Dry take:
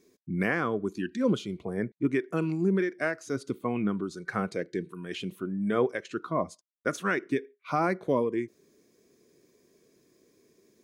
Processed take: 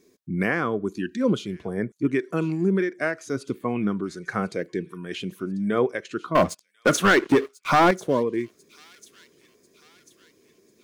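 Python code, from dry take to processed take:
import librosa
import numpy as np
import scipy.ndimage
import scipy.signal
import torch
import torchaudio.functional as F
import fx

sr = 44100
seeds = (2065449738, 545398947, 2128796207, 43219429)

p1 = fx.leveller(x, sr, passes=3, at=(6.35, 7.91))
p2 = p1 + fx.echo_wet_highpass(p1, sr, ms=1043, feedback_pct=50, hz=3700.0, wet_db=-15.5, dry=0)
y = p2 * 10.0 ** (3.5 / 20.0)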